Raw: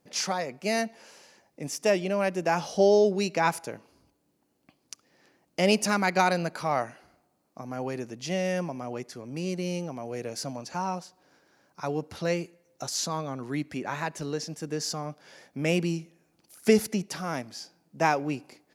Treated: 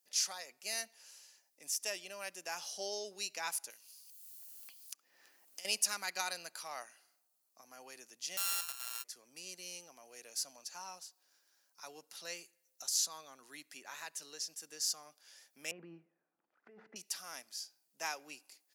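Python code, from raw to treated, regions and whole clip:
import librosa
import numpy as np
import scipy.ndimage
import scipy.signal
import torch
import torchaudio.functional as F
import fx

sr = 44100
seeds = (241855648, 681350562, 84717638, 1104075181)

y = fx.chain(x, sr, fx.high_shelf(hz=8400.0, db=6.0),
    fx.band_squash(depth_pct=100), at=(3.7, 5.65))
y = fx.chain(y, sr, fx.sample_sort(block=32),
    fx.highpass(hz=810.0, slope=12),
    fx.doubler(ms=37.0, db=-12.5), at=(8.37, 9.04))
y = fx.chain(y, sr, fx.lowpass(hz=1500.0, slope=24),
    fx.over_compress(threshold_db=-28.0, ratio=-1.0),
    fx.low_shelf(hz=180.0, db=7.0), at=(15.71, 16.96))
y = scipy.signal.sosfilt(scipy.signal.butter(2, 170.0, 'highpass', fs=sr, output='sos'), y)
y = np.diff(y, prepend=0.0)
y = fx.notch(y, sr, hz=2200.0, q=16.0)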